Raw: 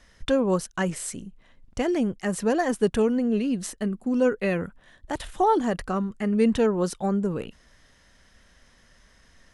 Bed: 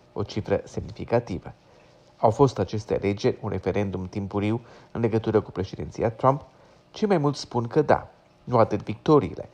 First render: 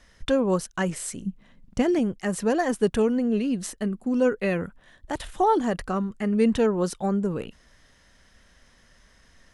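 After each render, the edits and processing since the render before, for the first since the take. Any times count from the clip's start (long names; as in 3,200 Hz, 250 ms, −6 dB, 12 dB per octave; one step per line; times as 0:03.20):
0:01.25–0:01.99: parametric band 190 Hz +13 dB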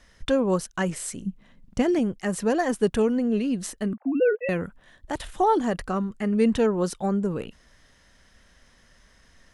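0:03.93–0:04.49: three sine waves on the formant tracks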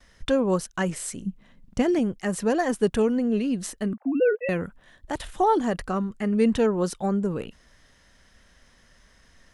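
noise gate with hold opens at −54 dBFS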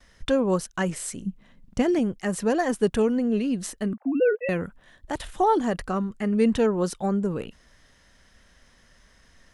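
no processing that can be heard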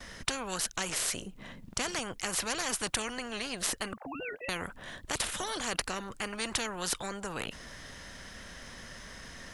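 every bin compressed towards the loudest bin 4 to 1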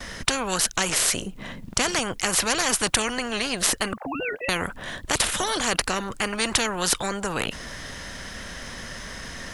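level +10 dB
brickwall limiter −2 dBFS, peak gain reduction 2 dB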